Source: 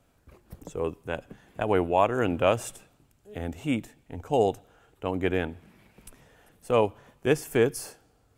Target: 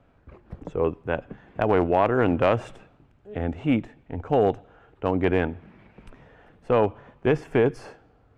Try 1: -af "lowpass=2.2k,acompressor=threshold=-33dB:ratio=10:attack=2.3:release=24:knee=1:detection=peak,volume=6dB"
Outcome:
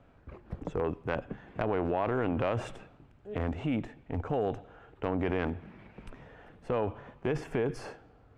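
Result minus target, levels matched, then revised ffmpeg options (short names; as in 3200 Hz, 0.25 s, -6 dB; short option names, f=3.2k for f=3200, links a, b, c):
compressor: peak gain reduction +10.5 dB
-af "lowpass=2.2k,acompressor=threshold=-21.5dB:ratio=10:attack=2.3:release=24:knee=1:detection=peak,volume=6dB"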